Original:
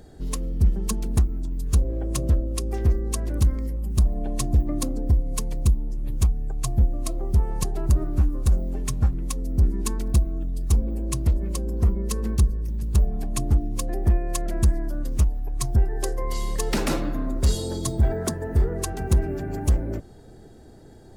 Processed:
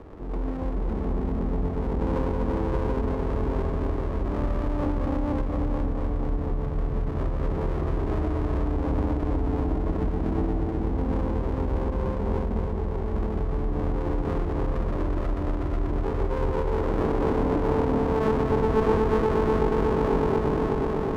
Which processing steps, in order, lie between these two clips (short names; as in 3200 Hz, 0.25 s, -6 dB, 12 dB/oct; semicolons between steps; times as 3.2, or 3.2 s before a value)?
reverse; compressor 6:1, threshold -32 dBFS, peak gain reduction 16.5 dB; reverse; steep low-pass 1400 Hz; on a send: swelling echo 0.122 s, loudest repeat 5, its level -8.5 dB; on the sum: digital reverb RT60 4.3 s, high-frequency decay 0.4×, pre-delay 65 ms, DRR -6 dB; limiter -19.5 dBFS, peak gain reduction 6.5 dB; bell 520 Hz +12 dB 1.7 oct; running maximum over 33 samples